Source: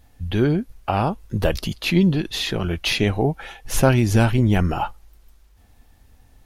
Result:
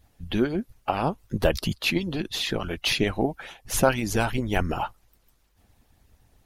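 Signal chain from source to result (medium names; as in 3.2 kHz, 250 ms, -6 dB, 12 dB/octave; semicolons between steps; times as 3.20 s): harmonic-percussive split harmonic -16 dB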